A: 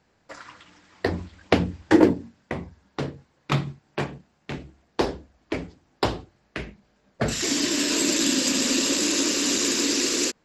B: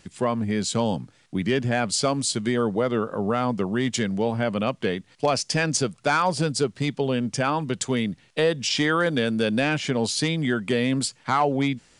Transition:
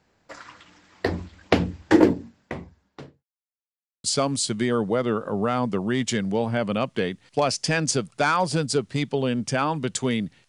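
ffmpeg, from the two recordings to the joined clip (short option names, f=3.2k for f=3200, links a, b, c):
-filter_complex "[0:a]apad=whole_dur=10.48,atrim=end=10.48,asplit=2[a][b];[a]atrim=end=3.24,asetpts=PTS-STARTPTS,afade=t=out:st=2.28:d=0.96[c];[b]atrim=start=3.24:end=4.04,asetpts=PTS-STARTPTS,volume=0[d];[1:a]atrim=start=1.9:end=8.34,asetpts=PTS-STARTPTS,afade=t=in:d=0.004:c=hsin[e];[c][d][e]concat=n=3:v=0:a=1"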